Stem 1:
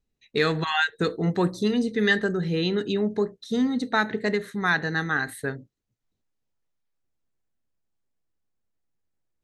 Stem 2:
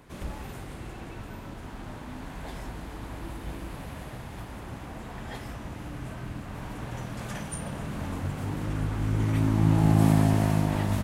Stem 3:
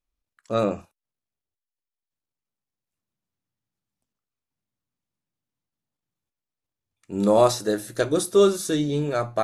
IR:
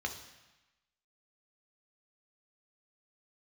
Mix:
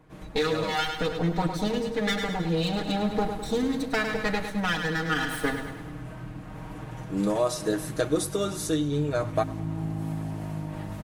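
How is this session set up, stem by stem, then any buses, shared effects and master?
+1.0 dB, 0.00 s, bus A, no send, echo send -11.5 dB, minimum comb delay 4.1 ms
-6.0 dB, 0.00 s, no bus, no send, no echo send, compressor 2.5:1, threshold -33 dBFS, peak gain reduction 12 dB
-4.0 dB, 0.00 s, bus A, no send, echo send -24 dB, dry
bus A: 0.0 dB, compressor 3:1, threshold -25 dBFS, peak gain reduction 7 dB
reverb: off
echo: feedback echo 0.103 s, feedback 56%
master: comb 6.4 ms; vocal rider within 4 dB 0.5 s; mismatched tape noise reduction decoder only

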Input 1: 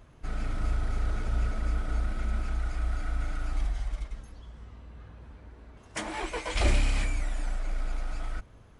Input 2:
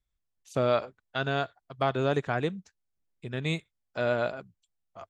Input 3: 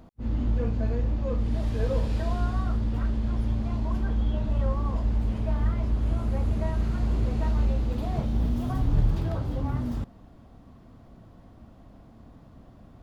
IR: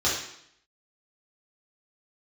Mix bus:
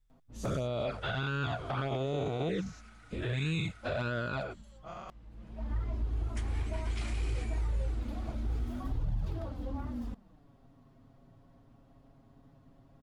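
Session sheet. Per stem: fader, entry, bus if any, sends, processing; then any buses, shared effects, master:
-12.0 dB, 0.40 s, no bus, no send, HPF 1100 Hz
-1.0 dB, 0.00 s, bus A, no send, spectral dilation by 0.24 s; low shelf 130 Hz +11.5 dB
-6.0 dB, 0.10 s, bus A, no send, auto duck -20 dB, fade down 1.30 s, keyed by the second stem
bus A: 0.0 dB, envelope flanger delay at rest 7.8 ms, full sweep at -17.5 dBFS; limiter -21 dBFS, peak gain reduction 10 dB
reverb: off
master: limiter -25 dBFS, peak gain reduction 4 dB

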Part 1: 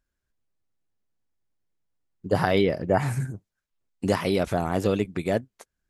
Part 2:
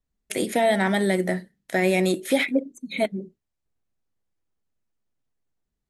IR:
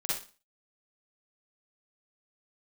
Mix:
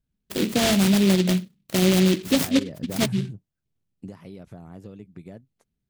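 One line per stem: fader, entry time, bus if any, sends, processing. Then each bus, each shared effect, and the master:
3.88 s -12.5 dB -> 4.1 s -19.5 dB, 0.00 s, no send, compressor 6:1, threshold -24 dBFS, peak gain reduction 8.5 dB
-3.5 dB, 0.00 s, no send, noise-modulated delay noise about 3000 Hz, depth 0.25 ms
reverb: off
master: bell 150 Hz +12 dB 2.2 oct

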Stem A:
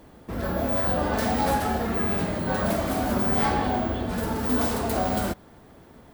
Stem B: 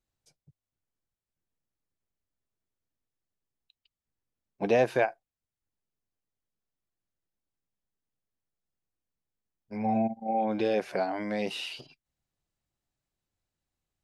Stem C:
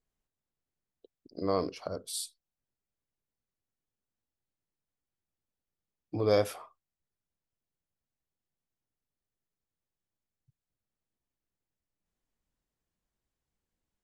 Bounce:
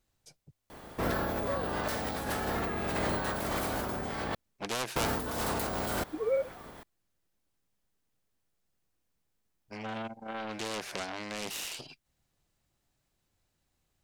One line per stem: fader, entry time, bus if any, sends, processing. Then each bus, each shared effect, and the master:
-3.0 dB, 0.70 s, muted 4.35–4.96, no send, spectral limiter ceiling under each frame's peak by 12 dB; negative-ratio compressor -30 dBFS, ratio -1
-2.0 dB, 0.00 s, no send, self-modulated delay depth 0.42 ms; spectral compressor 2:1
-4.5 dB, 0.00 s, no send, sine-wave speech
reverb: off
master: dry

